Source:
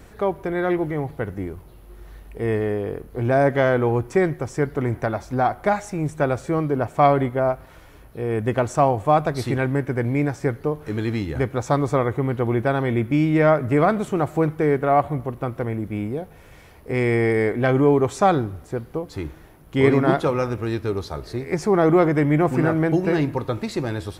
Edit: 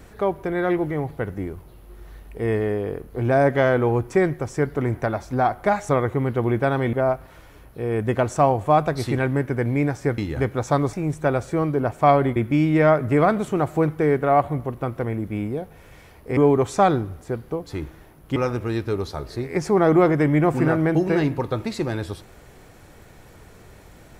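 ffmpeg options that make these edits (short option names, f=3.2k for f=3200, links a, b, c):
-filter_complex "[0:a]asplit=8[a][b][c][d][e][f][g][h];[a]atrim=end=5.892[i];[b]atrim=start=11.918:end=12.962[j];[c]atrim=start=7.318:end=10.572[k];[d]atrim=start=11.168:end=11.922[l];[e]atrim=start=5.888:end=7.322[m];[f]atrim=start=12.958:end=16.972[n];[g]atrim=start=17.798:end=19.792[o];[h]atrim=start=20.328[p];[i][j]acrossfade=d=0.004:c1=hsin:c2=hsin[q];[q][k]acrossfade=d=0.004:c1=hsin:c2=hsin[r];[r][l]acrossfade=d=0.004:c1=hsin:c2=hsin[s];[s][m]acrossfade=d=0.004:c1=hsin:c2=hsin[t];[t][n]acrossfade=d=0.004:c1=hsin:c2=hsin[u];[u][o]acrossfade=d=0.004:c1=hsin:c2=hsin[v];[v][p]acrossfade=d=0.004:c1=hsin:c2=hsin"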